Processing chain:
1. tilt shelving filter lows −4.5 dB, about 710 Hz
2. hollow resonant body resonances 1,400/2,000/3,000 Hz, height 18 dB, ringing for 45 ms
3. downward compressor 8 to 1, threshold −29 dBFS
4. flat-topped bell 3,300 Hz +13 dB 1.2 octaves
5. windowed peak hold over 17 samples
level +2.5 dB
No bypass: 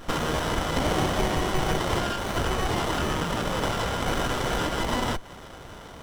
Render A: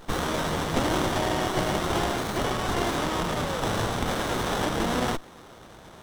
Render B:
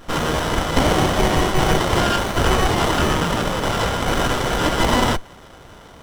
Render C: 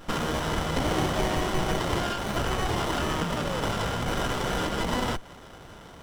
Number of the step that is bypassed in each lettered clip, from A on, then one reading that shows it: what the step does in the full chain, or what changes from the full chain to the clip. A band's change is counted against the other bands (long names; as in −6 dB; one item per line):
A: 2, change in crest factor +2.0 dB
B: 3, average gain reduction 6.0 dB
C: 1, change in integrated loudness −1.5 LU